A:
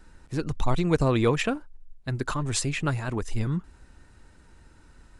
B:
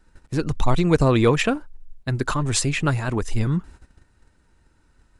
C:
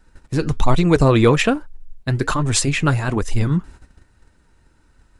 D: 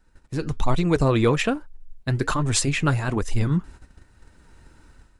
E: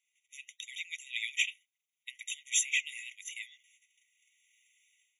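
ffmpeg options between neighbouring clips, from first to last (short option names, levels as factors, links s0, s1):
-af "agate=range=0.251:threshold=0.00447:ratio=16:detection=peak,acontrast=38"
-af "flanger=delay=1.1:depth=7.2:regen=-75:speed=1.2:shape=triangular,volume=2.51"
-af "dynaudnorm=f=350:g=3:m=4.73,volume=0.422"
-af "afftfilt=real='re*eq(mod(floor(b*sr/1024/1900),2),1)':imag='im*eq(mod(floor(b*sr/1024/1900),2),1)':win_size=1024:overlap=0.75,volume=0.841"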